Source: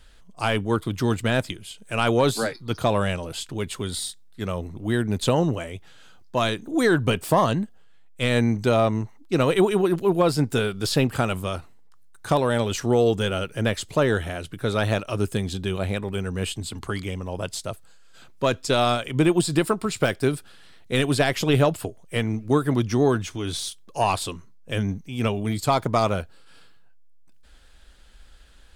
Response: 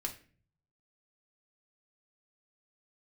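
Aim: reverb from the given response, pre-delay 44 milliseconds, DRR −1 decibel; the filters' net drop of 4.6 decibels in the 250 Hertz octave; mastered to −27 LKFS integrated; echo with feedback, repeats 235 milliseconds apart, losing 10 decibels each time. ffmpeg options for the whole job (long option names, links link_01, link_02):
-filter_complex "[0:a]equalizer=frequency=250:width_type=o:gain=-6.5,aecho=1:1:235|470|705|940:0.316|0.101|0.0324|0.0104,asplit=2[link_01][link_02];[1:a]atrim=start_sample=2205,adelay=44[link_03];[link_02][link_03]afir=irnorm=-1:irlink=0,volume=0.5dB[link_04];[link_01][link_04]amix=inputs=2:normalize=0,volume=-5dB"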